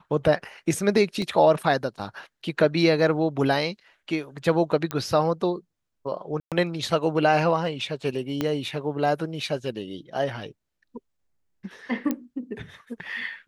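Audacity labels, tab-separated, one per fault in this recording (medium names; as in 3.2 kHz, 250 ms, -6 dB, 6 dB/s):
1.220000	1.220000	dropout 2.1 ms
4.910000	4.910000	pop -13 dBFS
6.400000	6.520000	dropout 117 ms
8.410000	8.410000	pop -12 dBFS
12.110000	12.110000	pop -13 dBFS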